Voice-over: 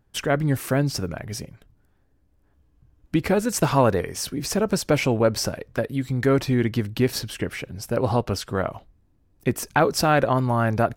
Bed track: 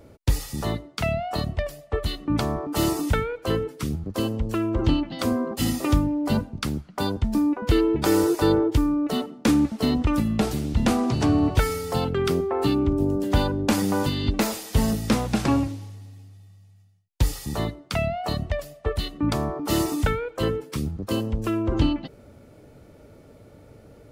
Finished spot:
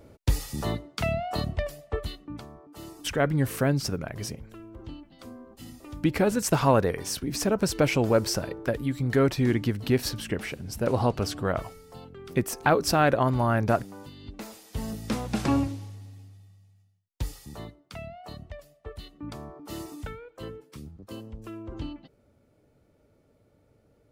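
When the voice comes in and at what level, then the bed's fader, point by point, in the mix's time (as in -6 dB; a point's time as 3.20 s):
2.90 s, -2.5 dB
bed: 1.89 s -2.5 dB
2.50 s -20.5 dB
14.16 s -20.5 dB
15.58 s -2 dB
16.24 s -2 dB
17.77 s -15 dB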